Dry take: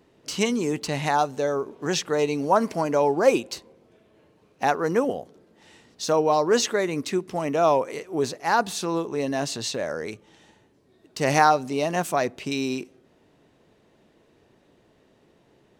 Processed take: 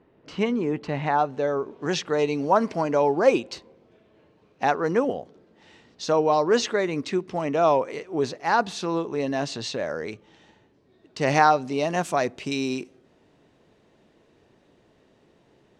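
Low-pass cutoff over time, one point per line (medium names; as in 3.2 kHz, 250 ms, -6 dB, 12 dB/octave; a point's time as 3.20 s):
1.10 s 2.1 kHz
1.82 s 5 kHz
11.55 s 5 kHz
12.18 s 8.6 kHz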